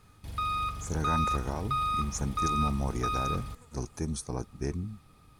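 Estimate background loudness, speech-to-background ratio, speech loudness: -32.0 LUFS, -3.0 dB, -35.0 LUFS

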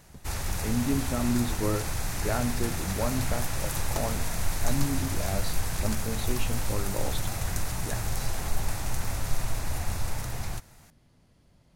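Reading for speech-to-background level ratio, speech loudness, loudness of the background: -1.0 dB, -33.5 LUFS, -32.5 LUFS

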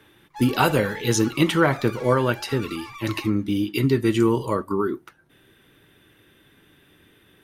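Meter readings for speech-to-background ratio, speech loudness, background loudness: 17.5 dB, -22.5 LUFS, -40.0 LUFS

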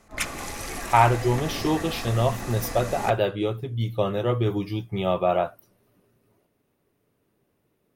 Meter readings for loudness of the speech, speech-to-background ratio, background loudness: -24.5 LUFS, 9.0 dB, -33.5 LUFS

